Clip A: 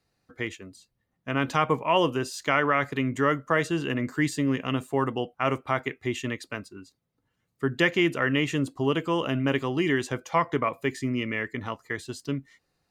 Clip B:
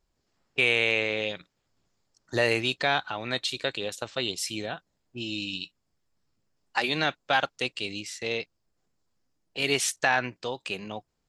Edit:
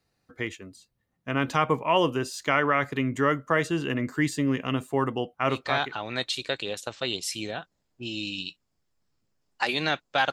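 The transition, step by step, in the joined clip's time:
clip A
0:05.73: continue with clip B from 0:02.88, crossfade 0.56 s equal-power

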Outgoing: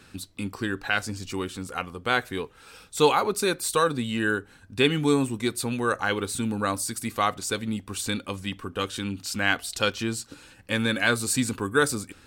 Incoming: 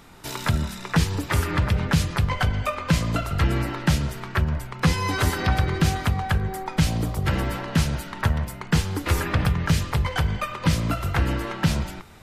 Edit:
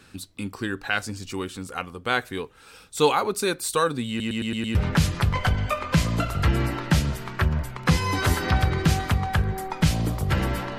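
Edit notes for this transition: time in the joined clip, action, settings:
outgoing
0:04.09: stutter in place 0.11 s, 6 plays
0:04.75: continue with incoming from 0:01.71

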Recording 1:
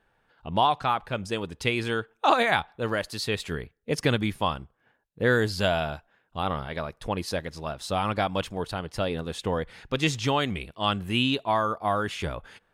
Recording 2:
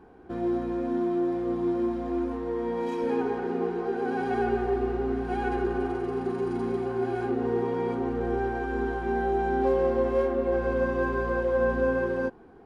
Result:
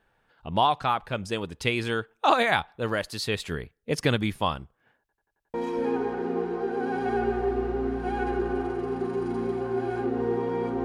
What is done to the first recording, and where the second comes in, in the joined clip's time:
recording 1
0:05.00: stutter in place 0.09 s, 6 plays
0:05.54: continue with recording 2 from 0:02.79

